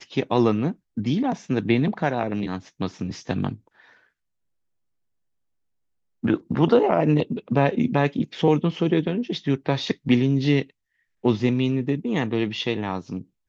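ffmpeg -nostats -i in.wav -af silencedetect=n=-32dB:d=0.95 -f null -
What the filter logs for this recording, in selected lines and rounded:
silence_start: 3.54
silence_end: 6.24 | silence_duration: 2.69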